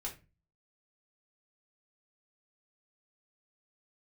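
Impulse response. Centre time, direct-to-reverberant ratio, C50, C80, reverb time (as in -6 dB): 16 ms, -3.0 dB, 11.5 dB, 18.5 dB, 0.30 s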